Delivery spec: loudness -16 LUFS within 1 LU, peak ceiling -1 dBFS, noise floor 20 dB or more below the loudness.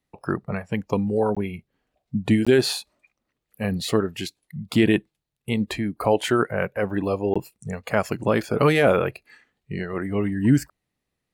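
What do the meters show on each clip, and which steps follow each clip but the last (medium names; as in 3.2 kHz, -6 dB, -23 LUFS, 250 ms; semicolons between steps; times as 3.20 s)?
dropouts 3; longest dropout 16 ms; loudness -23.5 LUFS; peak level -6.0 dBFS; loudness target -16.0 LUFS
-> interpolate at 1.35/2.45/7.34 s, 16 ms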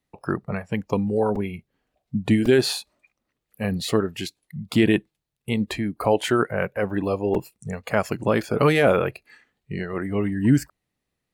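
dropouts 0; loudness -23.5 LUFS; peak level -6.0 dBFS; loudness target -16.0 LUFS
-> trim +7.5 dB; peak limiter -1 dBFS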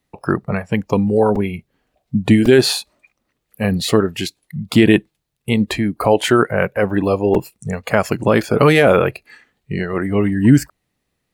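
loudness -16.5 LUFS; peak level -1.0 dBFS; noise floor -74 dBFS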